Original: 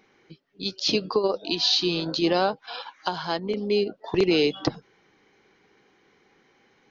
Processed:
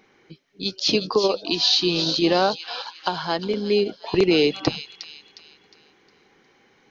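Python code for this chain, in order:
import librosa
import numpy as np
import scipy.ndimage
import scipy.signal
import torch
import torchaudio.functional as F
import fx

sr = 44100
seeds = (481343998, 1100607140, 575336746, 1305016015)

y = fx.echo_wet_highpass(x, sr, ms=359, feedback_pct=37, hz=3000.0, wet_db=-6.0)
y = y * 10.0 ** (3.0 / 20.0)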